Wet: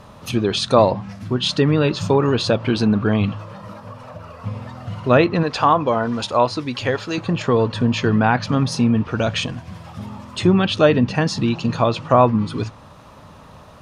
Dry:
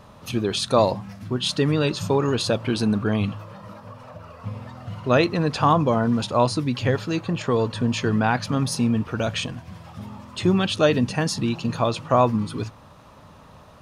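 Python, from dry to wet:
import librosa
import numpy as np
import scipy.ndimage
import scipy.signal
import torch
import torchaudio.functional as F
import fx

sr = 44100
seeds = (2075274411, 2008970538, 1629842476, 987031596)

y = fx.peak_eq(x, sr, hz=150.0, db=-10.0, octaves=1.9, at=(5.43, 7.18))
y = fx.env_lowpass_down(y, sr, base_hz=2900.0, full_db=-16.0)
y = y * 10.0 ** (4.5 / 20.0)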